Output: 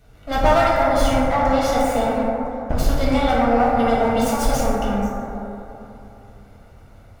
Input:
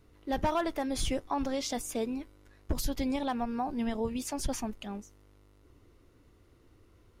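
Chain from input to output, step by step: comb filter that takes the minimum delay 1.4 ms; 0.76–3.01 s: treble shelf 4.1 kHz -6.5 dB; plate-style reverb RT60 3.1 s, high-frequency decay 0.25×, pre-delay 0 ms, DRR -7 dB; trim +7.5 dB

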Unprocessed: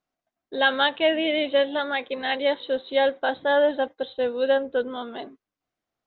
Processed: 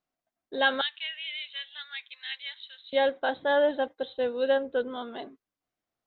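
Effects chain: 0.81–2.93 s: Bessel high-pass 2.7 kHz, order 4; trim -3.5 dB

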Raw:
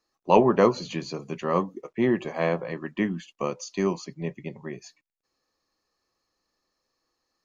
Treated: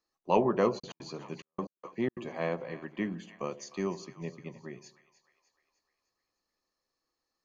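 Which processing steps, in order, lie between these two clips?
on a send: two-band feedback delay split 720 Hz, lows 80 ms, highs 303 ms, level -15 dB; 0.78–2.23 s: on the sum: trance gate "x..x..xxx.x.xxxx" 180 bpm -60 dB; trim -7.5 dB

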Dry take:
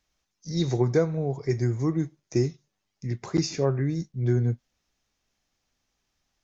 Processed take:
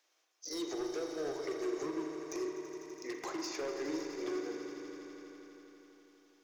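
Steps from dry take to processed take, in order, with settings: steep high-pass 300 Hz 72 dB/octave; hum notches 60/120/180/240/300/360/420 Hz; compression 4:1, threshold -38 dBFS, peak gain reduction 16.5 dB; transient shaper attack +3 dB, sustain -2 dB; peak limiter -30.5 dBFS, peak gain reduction 7.5 dB; hard clipper -38.5 dBFS, distortion -11 dB; echo with a slow build-up 83 ms, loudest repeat 5, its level -14 dB; spring tank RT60 2 s, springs 38 ms, chirp 50 ms, DRR 3.5 dB; trim +2.5 dB

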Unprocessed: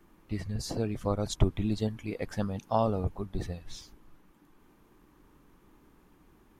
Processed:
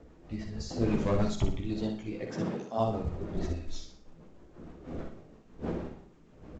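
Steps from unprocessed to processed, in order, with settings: wind noise 420 Hz -41 dBFS; 0.81–1.28 s: waveshaping leveller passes 2; 2.13–2.77 s: high-pass 90 Hz -> 210 Hz 24 dB/octave; 3.36–3.78 s: comb 3.1 ms, depth 69%; chorus voices 4, 1.1 Hz, delay 15 ms, depth 3.3 ms; rotary cabinet horn 6.3 Hz; on a send: feedback delay 61 ms, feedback 34%, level -6 dB; on the sum: Schroeder reverb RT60 0.44 s, DRR 12 dB; trim +1.5 dB; µ-law 128 kbps 16 kHz

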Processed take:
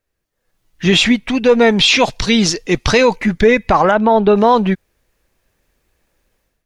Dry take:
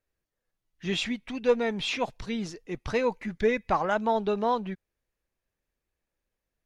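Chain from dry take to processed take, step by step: 1.79–3.16 s: peaking EQ 4.9 kHz +9 dB 2 oct; level rider gain up to 13 dB; peak limiter -10 dBFS, peak gain reduction 8 dB; 3.91–4.36 s: distance through air 220 m; trim +7.5 dB

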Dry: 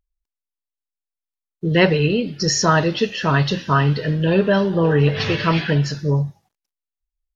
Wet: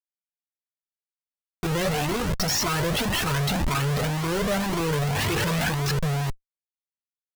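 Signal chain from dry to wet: Schmitt trigger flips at -31 dBFS; Shepard-style flanger rising 1.9 Hz

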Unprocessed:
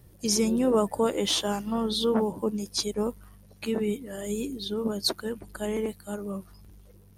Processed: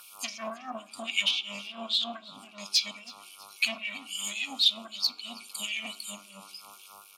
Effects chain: FFT band-reject 280–2200 Hz; low-pass that closes with the level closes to 1.1 kHz, closed at -23.5 dBFS; dynamic bell 9.2 kHz, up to -4 dB, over -60 dBFS, Q 1.2; in parallel at +1 dB: peak limiter -31 dBFS, peak gain reduction 11.5 dB; on the sum: saturation -24.5 dBFS, distortion -14 dB; mains buzz 100 Hz, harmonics 14, -58 dBFS -4 dB/octave; LFO high-pass sine 3.7 Hz 910–2500 Hz; frequency-shifting echo 324 ms, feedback 42%, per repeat +82 Hz, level -22 dB; on a send at -14.5 dB: reverberation RT60 0.45 s, pre-delay 5 ms; on the sum: trim +9 dB

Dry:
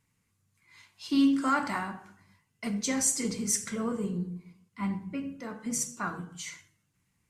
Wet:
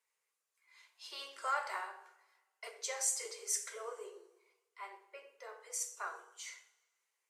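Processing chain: steep high-pass 390 Hz 96 dB/octave; two-slope reverb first 0.41 s, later 1.5 s, from -17 dB, DRR 8.5 dB; trim -7.5 dB

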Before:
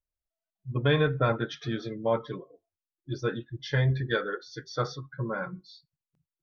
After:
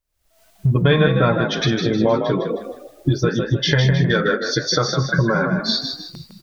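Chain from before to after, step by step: recorder AGC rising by 73 dB/s; frequency-shifting echo 156 ms, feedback 38%, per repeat +41 Hz, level -6.5 dB; trim +7.5 dB

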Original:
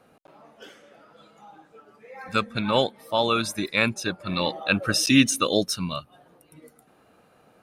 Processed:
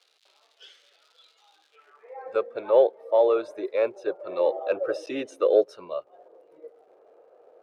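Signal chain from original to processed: resonant low shelf 290 Hz -10 dB, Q 3; in parallel at -3.5 dB: saturation -16.5 dBFS, distortion -11 dB; on the sum: crackle 210 per s -39 dBFS; band-pass sweep 3.9 kHz -> 550 Hz, 1.66–2.23 s

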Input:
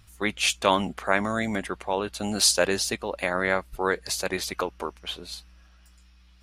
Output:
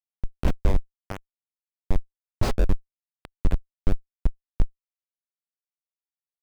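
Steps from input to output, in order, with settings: Schmitt trigger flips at -15.5 dBFS; tilt EQ -2.5 dB/octave; trim +1.5 dB

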